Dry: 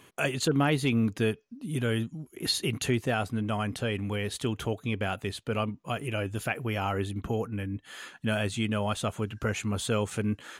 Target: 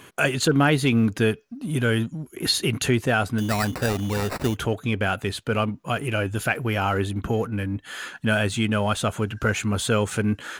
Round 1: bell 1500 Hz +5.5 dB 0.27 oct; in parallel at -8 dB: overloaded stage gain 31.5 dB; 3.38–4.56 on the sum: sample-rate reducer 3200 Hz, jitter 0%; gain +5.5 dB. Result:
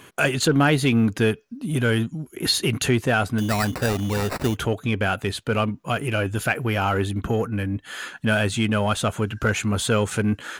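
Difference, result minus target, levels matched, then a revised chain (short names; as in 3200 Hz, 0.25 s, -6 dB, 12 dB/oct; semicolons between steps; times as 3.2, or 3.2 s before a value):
overloaded stage: distortion -4 dB
bell 1500 Hz +5.5 dB 0.27 oct; in parallel at -8 dB: overloaded stage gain 43 dB; 3.38–4.56 on the sum: sample-rate reducer 3200 Hz, jitter 0%; gain +5.5 dB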